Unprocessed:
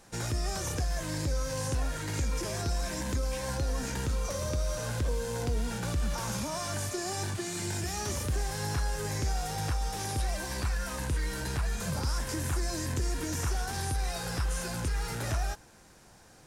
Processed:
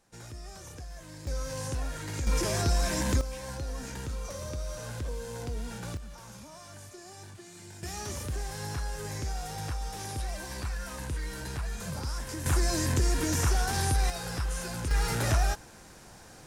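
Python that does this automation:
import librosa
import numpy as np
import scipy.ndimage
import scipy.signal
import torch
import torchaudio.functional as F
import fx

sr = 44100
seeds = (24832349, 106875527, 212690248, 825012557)

y = fx.gain(x, sr, db=fx.steps((0.0, -12.0), (1.27, -2.5), (2.27, 5.0), (3.21, -5.0), (5.97, -13.5), (7.83, -3.5), (12.46, 5.0), (14.1, -1.0), (14.91, 5.5)))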